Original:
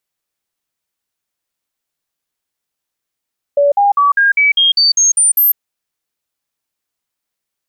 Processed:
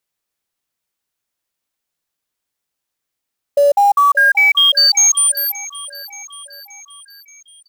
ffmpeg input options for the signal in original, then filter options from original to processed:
-f lavfi -i "aevalsrc='0.422*clip(min(mod(t,0.2),0.15-mod(t,0.2))/0.005,0,1)*sin(2*PI*572*pow(2,floor(t/0.2)/2)*mod(t,0.2))':duration=2:sample_rate=44100"
-filter_complex "[0:a]acrossover=split=9200[link_01][link_02];[link_02]acompressor=threshold=-22dB:ratio=4:attack=1:release=60[link_03];[link_01][link_03]amix=inputs=2:normalize=0,acrusher=bits=6:mode=log:mix=0:aa=0.000001,aecho=1:1:577|1154|1731|2308|2885:0.126|0.0705|0.0395|0.0221|0.0124"

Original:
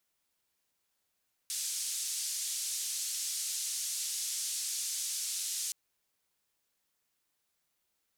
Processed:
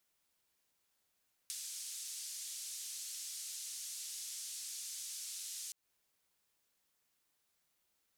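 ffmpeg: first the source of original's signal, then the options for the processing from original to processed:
-f lavfi -i "anoisesrc=color=white:duration=4.22:sample_rate=44100:seed=1,highpass=frequency=5600,lowpass=frequency=8000,volume=-22.3dB"
-af "acompressor=threshold=-42dB:ratio=10"

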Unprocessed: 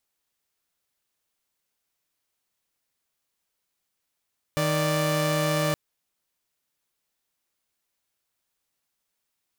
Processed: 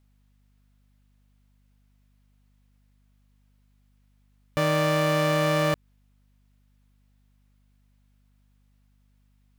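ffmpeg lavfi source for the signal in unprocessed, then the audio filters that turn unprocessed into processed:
-f lavfi -i "aevalsrc='0.075*((2*mod(155.56*t,1)-1)+(2*mod(587.33*t,1)-1))':duration=1.17:sample_rate=44100"
-filter_complex "[0:a]bass=frequency=250:gain=-2,treble=frequency=4000:gain=-8,asplit=2[link_01][link_02];[link_02]alimiter=level_in=3dB:limit=-24dB:level=0:latency=1:release=133,volume=-3dB,volume=-0.5dB[link_03];[link_01][link_03]amix=inputs=2:normalize=0,aeval=exprs='val(0)+0.000794*(sin(2*PI*50*n/s)+sin(2*PI*2*50*n/s)/2+sin(2*PI*3*50*n/s)/3+sin(2*PI*4*50*n/s)/4+sin(2*PI*5*50*n/s)/5)':channel_layout=same"

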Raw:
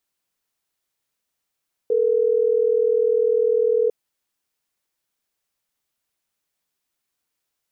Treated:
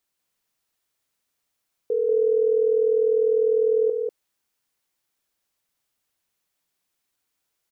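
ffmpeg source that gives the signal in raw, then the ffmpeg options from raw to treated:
-f lavfi -i "aevalsrc='0.119*(sin(2*PI*440*t)+sin(2*PI*480*t))*clip(min(mod(t,6),2-mod(t,6))/0.005,0,1)':duration=3.12:sample_rate=44100"
-filter_complex "[0:a]alimiter=limit=-17dB:level=0:latency=1:release=33,asplit=2[link_01][link_02];[link_02]aecho=0:1:191:0.668[link_03];[link_01][link_03]amix=inputs=2:normalize=0"

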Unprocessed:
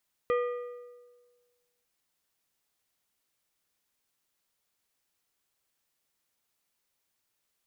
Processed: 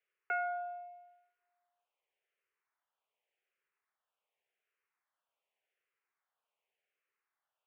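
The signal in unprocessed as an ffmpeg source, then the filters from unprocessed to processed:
-f lavfi -i "aevalsrc='0.0708*pow(10,-3*t/1.46)*sin(2*PI*487*t)+0.0316*pow(10,-3*t/1.109)*sin(2*PI*1217.5*t)+0.0141*pow(10,-3*t/0.963)*sin(2*PI*1948*t)+0.00631*pow(10,-3*t/0.901)*sin(2*PI*2435*t)+0.00282*pow(10,-3*t/0.833)*sin(2*PI*3165.5*t)':duration=1.55:sample_rate=44100"
-filter_complex "[0:a]highpass=frequency=160:width_type=q:width=0.5412,highpass=frequency=160:width_type=q:width=1.307,lowpass=frequency=2700:width_type=q:width=0.5176,lowpass=frequency=2700:width_type=q:width=0.7071,lowpass=frequency=2700:width_type=q:width=1.932,afreqshift=220,asplit=2[link_01][link_02];[link_02]afreqshift=-0.87[link_03];[link_01][link_03]amix=inputs=2:normalize=1"

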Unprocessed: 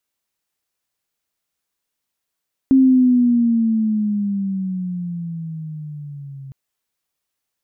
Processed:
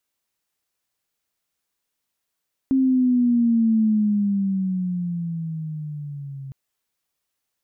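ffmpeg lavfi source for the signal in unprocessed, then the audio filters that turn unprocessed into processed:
-f lavfi -i "aevalsrc='pow(10,(-8-24*t/3.81)/20)*sin(2*PI*268*3.81/(-12*log(2)/12)*(exp(-12*log(2)/12*t/3.81)-1))':duration=3.81:sample_rate=44100"
-af "alimiter=limit=-15dB:level=0:latency=1"

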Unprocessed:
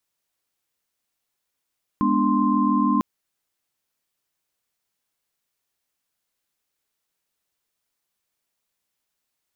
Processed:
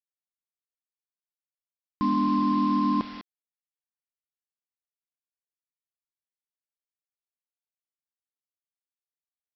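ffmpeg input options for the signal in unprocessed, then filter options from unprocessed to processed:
-f lavfi -i "aevalsrc='0.075*(sin(2*PI*207.65*t)+sin(2*PI*246.94*t)+sin(2*PI*293.66*t)+sin(2*PI*1046.5*t))':duration=1:sample_rate=44100"
-af "alimiter=limit=-16.5dB:level=0:latency=1:release=17,aecho=1:1:201:0.133,aresample=11025,acrusher=bits=6:mix=0:aa=0.000001,aresample=44100"

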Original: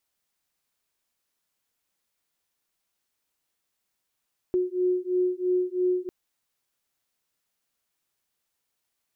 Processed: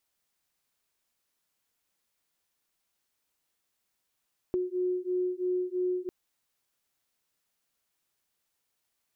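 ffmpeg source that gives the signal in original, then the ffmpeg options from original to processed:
-f lavfi -i "aevalsrc='0.0531*(sin(2*PI*362*t)+sin(2*PI*365*t))':duration=1.55:sample_rate=44100"
-af "acompressor=threshold=-30dB:ratio=2.5"

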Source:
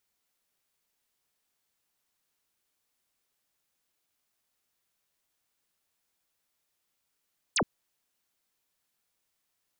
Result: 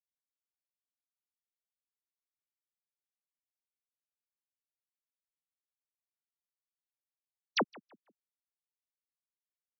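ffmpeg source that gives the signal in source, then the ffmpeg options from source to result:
-f lavfi -i "aevalsrc='0.0708*clip(t/0.002,0,1)*clip((0.07-t)/0.002,0,1)*sin(2*PI*9600*0.07/log(140/9600)*(exp(log(140/9600)*t/0.07)-1))':duration=0.07:sample_rate=44100"
-filter_complex "[0:a]highpass=frequency=200:width=0.5412,highpass=frequency=200:width=1.3066,afftfilt=real='re*gte(hypot(re,im),0.0794)':imag='im*gte(hypot(re,im),0.0794)':win_size=1024:overlap=0.75,asplit=2[link_01][link_02];[link_02]adelay=161,lowpass=frequency=1900:poles=1,volume=-21.5dB,asplit=2[link_03][link_04];[link_04]adelay=161,lowpass=frequency=1900:poles=1,volume=0.35,asplit=2[link_05][link_06];[link_06]adelay=161,lowpass=frequency=1900:poles=1,volume=0.35[link_07];[link_01][link_03][link_05][link_07]amix=inputs=4:normalize=0"

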